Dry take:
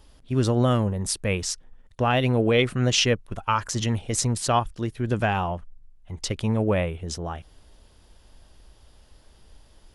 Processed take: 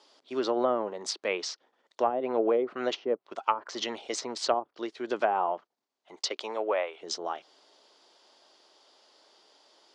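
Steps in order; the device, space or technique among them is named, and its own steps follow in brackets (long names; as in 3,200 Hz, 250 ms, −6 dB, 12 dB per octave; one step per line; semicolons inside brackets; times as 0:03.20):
phone speaker on a table (loudspeaker in its box 370–6,900 Hz, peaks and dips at 490 Hz −4 dB, 1,700 Hz −5 dB, 2,600 Hz −4 dB, 4,500 Hz +4 dB)
0:06.16–0:06.99: high-pass filter 280 Hz → 620 Hz 12 dB per octave
treble cut that deepens with the level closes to 480 Hz, closed at −19.5 dBFS
level +1.5 dB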